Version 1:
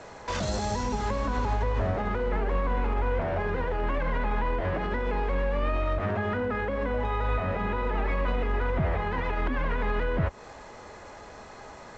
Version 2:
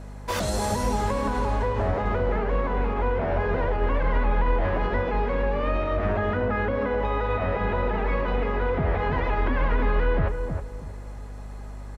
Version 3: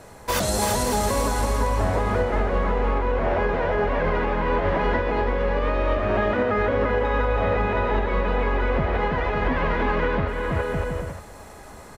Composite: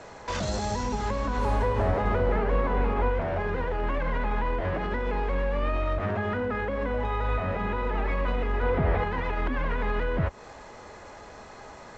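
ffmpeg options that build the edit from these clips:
-filter_complex "[1:a]asplit=2[a][b];[0:a]asplit=3[c][d][e];[c]atrim=end=1.46[f];[a]atrim=start=1.36:end=3.16[g];[d]atrim=start=3.06:end=8.632[h];[b]atrim=start=8.628:end=9.042[i];[e]atrim=start=9.038[j];[f][g]acrossfade=d=0.1:c1=tri:c2=tri[k];[k][h]acrossfade=d=0.1:c1=tri:c2=tri[l];[l][i]acrossfade=d=0.004:c1=hsin:c2=hsin[m];[m][j]acrossfade=d=0.004:c1=hsin:c2=hsin"

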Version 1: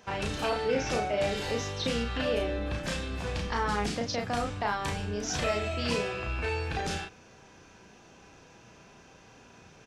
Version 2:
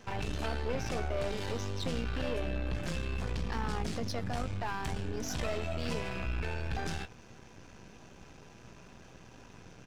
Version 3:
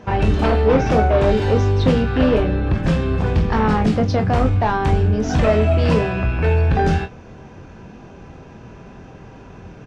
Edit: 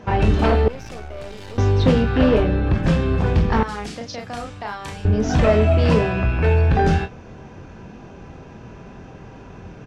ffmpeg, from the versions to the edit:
-filter_complex "[2:a]asplit=3[a][b][c];[a]atrim=end=0.682[d];[1:a]atrim=start=0.678:end=1.582[e];[b]atrim=start=1.578:end=3.632[f];[0:a]atrim=start=3.628:end=5.052[g];[c]atrim=start=5.048[h];[d][e]acrossfade=d=0.004:c1=hsin:c2=hsin[i];[i][f]acrossfade=d=0.004:c1=hsin:c2=hsin[j];[j][g]acrossfade=d=0.004:c1=hsin:c2=hsin[k];[k][h]acrossfade=d=0.004:c1=hsin:c2=hsin"

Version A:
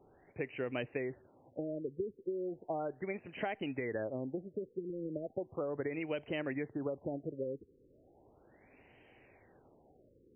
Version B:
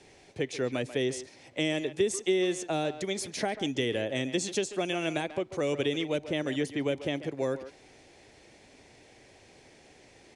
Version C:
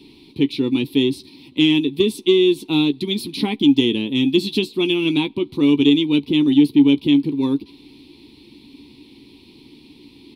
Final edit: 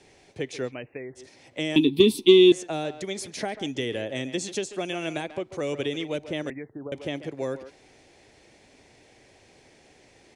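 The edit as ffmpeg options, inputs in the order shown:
-filter_complex "[0:a]asplit=2[a][b];[1:a]asplit=4[c][d][e][f];[c]atrim=end=0.75[g];[a]atrim=start=0.65:end=1.25[h];[d]atrim=start=1.15:end=1.762[i];[2:a]atrim=start=1.758:end=2.522[j];[e]atrim=start=2.518:end=6.502[k];[b]atrim=start=6.498:end=6.922[l];[f]atrim=start=6.918[m];[g][h]acrossfade=d=0.1:c1=tri:c2=tri[n];[n][i]acrossfade=d=0.1:c1=tri:c2=tri[o];[o][j]acrossfade=d=0.004:c1=hsin:c2=hsin[p];[p][k]acrossfade=d=0.004:c1=hsin:c2=hsin[q];[q][l]acrossfade=d=0.004:c1=hsin:c2=hsin[r];[r][m]acrossfade=d=0.004:c1=hsin:c2=hsin"

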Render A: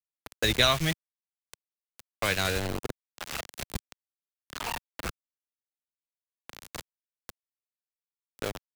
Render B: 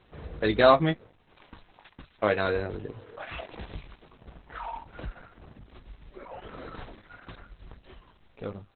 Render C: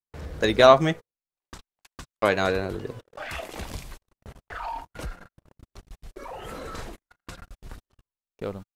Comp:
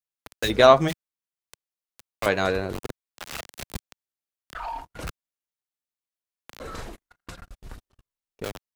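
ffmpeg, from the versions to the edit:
-filter_complex "[2:a]asplit=4[a][b][c][d];[0:a]asplit=5[e][f][g][h][i];[e]atrim=end=0.51[j];[a]atrim=start=0.47:end=0.91[k];[f]atrim=start=0.87:end=2.262[l];[b]atrim=start=2.258:end=2.732[m];[g]atrim=start=2.728:end=4.552[n];[c]atrim=start=4.548:end=5.072[o];[h]atrim=start=5.068:end=6.602[p];[d]atrim=start=6.598:end=8.442[q];[i]atrim=start=8.438[r];[j][k]acrossfade=d=0.04:c1=tri:c2=tri[s];[s][l]acrossfade=d=0.04:c1=tri:c2=tri[t];[t][m]acrossfade=d=0.004:c1=hsin:c2=hsin[u];[u][n]acrossfade=d=0.004:c1=hsin:c2=hsin[v];[v][o]acrossfade=d=0.004:c1=hsin:c2=hsin[w];[w][p]acrossfade=d=0.004:c1=hsin:c2=hsin[x];[x][q]acrossfade=d=0.004:c1=hsin:c2=hsin[y];[y][r]acrossfade=d=0.004:c1=hsin:c2=hsin"

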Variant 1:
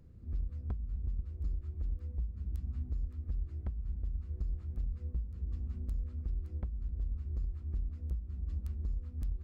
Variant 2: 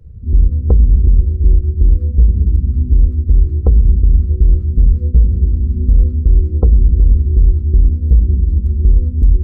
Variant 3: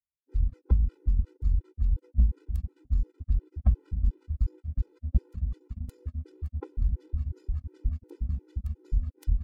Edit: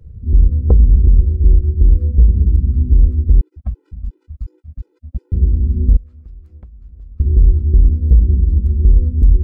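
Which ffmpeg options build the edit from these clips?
-filter_complex "[1:a]asplit=3[a][b][c];[a]atrim=end=3.412[d];[2:a]atrim=start=3.408:end=5.322[e];[b]atrim=start=5.318:end=5.972[f];[0:a]atrim=start=5.968:end=7.202[g];[c]atrim=start=7.198[h];[d][e]acrossfade=d=0.004:c1=hsin:c2=hsin[i];[i][f]acrossfade=d=0.004:c1=hsin:c2=hsin[j];[j][g]acrossfade=d=0.004:c1=hsin:c2=hsin[k];[k][h]acrossfade=d=0.004:c1=hsin:c2=hsin"

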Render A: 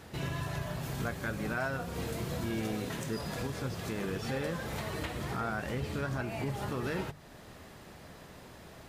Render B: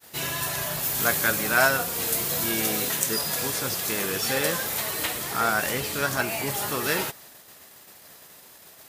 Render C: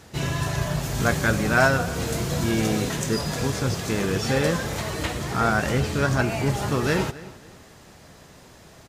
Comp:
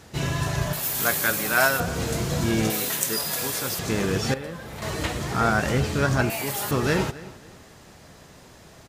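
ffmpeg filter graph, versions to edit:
-filter_complex "[1:a]asplit=3[a][b][c];[2:a]asplit=5[d][e][f][g][h];[d]atrim=end=0.732[i];[a]atrim=start=0.728:end=1.802[j];[e]atrim=start=1.798:end=2.702[k];[b]atrim=start=2.698:end=3.792[l];[f]atrim=start=3.788:end=4.342[m];[0:a]atrim=start=4.338:end=4.822[n];[g]atrim=start=4.818:end=6.302[o];[c]atrim=start=6.298:end=6.712[p];[h]atrim=start=6.708[q];[i][j]acrossfade=d=0.004:c1=hsin:c2=hsin[r];[r][k]acrossfade=d=0.004:c1=hsin:c2=hsin[s];[s][l]acrossfade=d=0.004:c1=hsin:c2=hsin[t];[t][m]acrossfade=d=0.004:c1=hsin:c2=hsin[u];[u][n]acrossfade=d=0.004:c1=hsin:c2=hsin[v];[v][o]acrossfade=d=0.004:c1=hsin:c2=hsin[w];[w][p]acrossfade=d=0.004:c1=hsin:c2=hsin[x];[x][q]acrossfade=d=0.004:c1=hsin:c2=hsin"

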